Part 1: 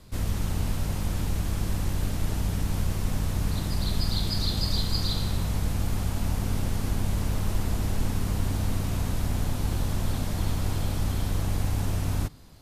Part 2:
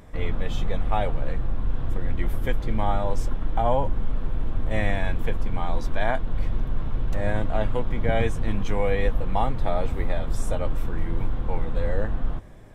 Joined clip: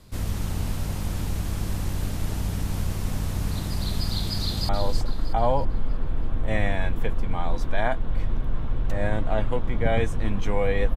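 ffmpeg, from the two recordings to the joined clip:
ffmpeg -i cue0.wav -i cue1.wav -filter_complex "[0:a]apad=whole_dur=10.96,atrim=end=10.96,atrim=end=4.692[link_01];[1:a]atrim=start=2.918:end=9.19[link_02];[link_01][link_02]acrossfade=duration=0.004:curve1=hsin:curve2=hsin,asplit=2[link_03][link_04];[link_04]afade=type=in:start_time=4.41:duration=0.01,afade=type=out:start_time=4.69:duration=0.01,aecho=0:1:320|640|960|1280|1600:0.421697|0.168679|0.0674714|0.0269886|0.0107954[link_05];[link_03][link_05]amix=inputs=2:normalize=0" out.wav

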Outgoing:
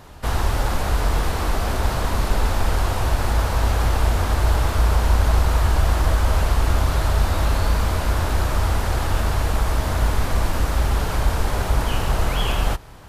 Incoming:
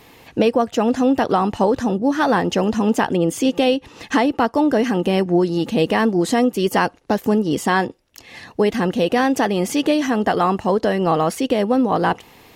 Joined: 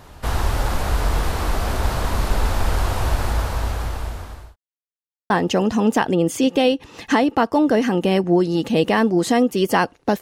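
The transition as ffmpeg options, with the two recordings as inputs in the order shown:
ffmpeg -i cue0.wav -i cue1.wav -filter_complex "[0:a]apad=whole_dur=10.21,atrim=end=10.21,asplit=2[link_01][link_02];[link_01]atrim=end=4.56,asetpts=PTS-STARTPTS,afade=type=out:start_time=3.12:duration=1.44[link_03];[link_02]atrim=start=4.56:end=5.3,asetpts=PTS-STARTPTS,volume=0[link_04];[1:a]atrim=start=2.32:end=7.23,asetpts=PTS-STARTPTS,afade=type=in:duration=0.004:curve=hsin[link_05];[link_03][link_04][link_05]concat=n=3:v=0:a=1" out.wav

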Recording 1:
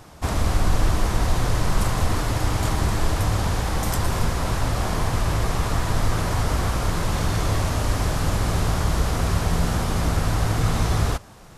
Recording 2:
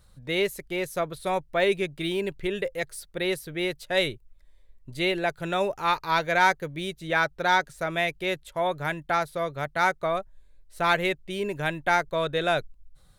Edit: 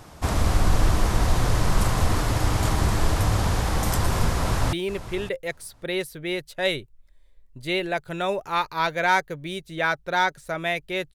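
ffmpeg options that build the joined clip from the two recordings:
ffmpeg -i cue0.wav -i cue1.wav -filter_complex "[0:a]apad=whole_dur=11.14,atrim=end=11.14,atrim=end=4.732[link_01];[1:a]atrim=start=2.048:end=8.46[link_02];[link_01][link_02]acrossfade=duration=0.004:curve1=hsin:curve2=hsin,asplit=2[link_03][link_04];[link_04]afade=type=in:start_time=4.32:duration=0.01,afade=type=out:start_time=4.73:duration=0.01,aecho=0:1:560|1120:0.188365|0.0188365[link_05];[link_03][link_05]amix=inputs=2:normalize=0" out.wav

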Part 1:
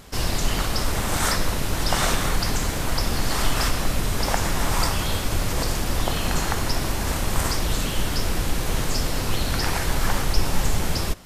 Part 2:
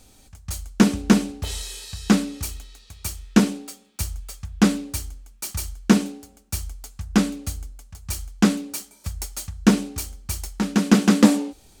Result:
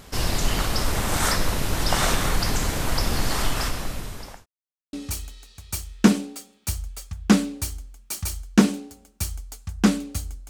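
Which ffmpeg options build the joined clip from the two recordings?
ffmpeg -i cue0.wav -i cue1.wav -filter_complex "[0:a]apad=whole_dur=10.49,atrim=end=10.49,asplit=2[link_01][link_02];[link_01]atrim=end=4.46,asetpts=PTS-STARTPTS,afade=type=out:start_time=3.21:duration=1.25[link_03];[link_02]atrim=start=4.46:end=4.93,asetpts=PTS-STARTPTS,volume=0[link_04];[1:a]atrim=start=2.25:end=7.81,asetpts=PTS-STARTPTS,afade=type=in:duration=0.004:curve=hsin[link_05];[link_03][link_04][link_05]concat=n=3:v=0:a=1" out.wav

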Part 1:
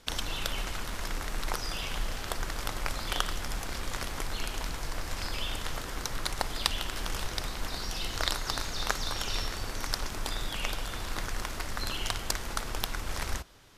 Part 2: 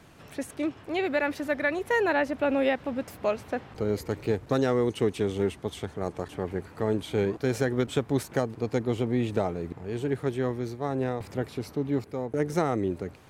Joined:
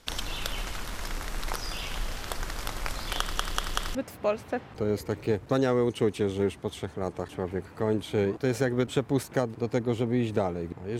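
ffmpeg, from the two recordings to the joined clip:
ffmpeg -i cue0.wav -i cue1.wav -filter_complex "[0:a]apad=whole_dur=10.99,atrim=end=10.99,asplit=4[link_01][link_02][link_03][link_04];[link_01]atrim=end=3.382[link_05];[link_02]atrim=start=3.188:end=3.382[link_06];[link_03]atrim=start=3.188:end=3.382[link_07];[link_04]atrim=start=3.188:end=3.382[link_08];[1:a]atrim=start=2.948:end=9.99[link_09];[link_05][link_06]acrossfade=duration=0.004:curve1=hsin:curve2=hsin[link_10];[link_10][link_07]acrossfade=duration=0.004:curve1=hsin:curve2=hsin[link_11];[link_11][link_08]acrossfade=duration=0.004:curve1=hsin:curve2=hsin[link_12];[link_12][link_09]acrossfade=duration=0.004:curve1=hsin:curve2=hsin" out.wav

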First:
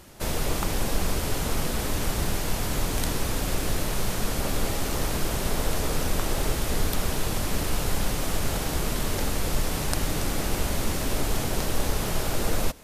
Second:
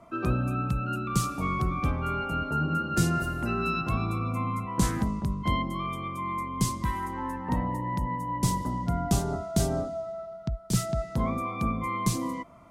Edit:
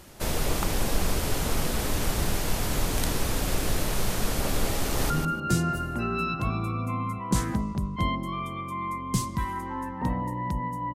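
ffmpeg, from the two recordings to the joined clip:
ffmpeg -i cue0.wav -i cue1.wav -filter_complex "[0:a]apad=whole_dur=10.94,atrim=end=10.94,atrim=end=5.102[link_01];[1:a]atrim=start=2.568:end=8.41[link_02];[link_01][link_02]acrossfade=duration=0.004:curve1=hsin:curve2=hsin,asplit=2[link_03][link_04];[link_04]afade=type=in:start_time=4.82:duration=0.01,afade=type=out:start_time=5.1:duration=0.01,aecho=0:1:150|300|450:0.530884|0.0796327|0.0119449[link_05];[link_03][link_05]amix=inputs=2:normalize=0" out.wav

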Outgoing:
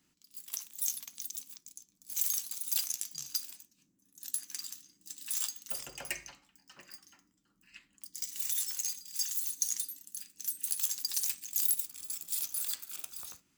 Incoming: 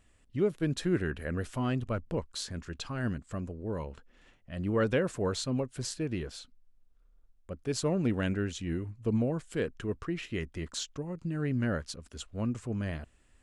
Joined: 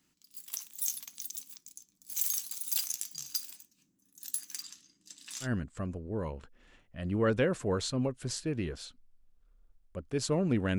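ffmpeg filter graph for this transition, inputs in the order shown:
ffmpeg -i cue0.wav -i cue1.wav -filter_complex "[0:a]asettb=1/sr,asplit=3[link_01][link_02][link_03];[link_01]atrim=end=4.624[link_04];[link_02]atrim=start=4.62:end=5.48,asetpts=PTS-STARTPTS,afade=type=in:duration=0.004:curve=qsin,afade=type=out:start_time=0.856:duration=0.004:curve=qsin,lowpass=6200[link_05];[link_03]atrim=start=5.476[link_06];[link_04][link_05]acrossfade=duration=0.004:curve1=hsin:curve2=qsin[link_07];[link_07][link_06]acrossfade=duration=0.004:curve1=qsin:curve2=hsin,apad=whole_dur=10.78,atrim=end=10.78,atrim=end=5.48,asetpts=PTS-STARTPTS[link_08];[1:a]atrim=start=2.94:end=8.32,asetpts=PTS-STARTPTS[link_09];[link_08][link_09]acrossfade=duration=0.08:curve1=tri:curve2=tri" out.wav

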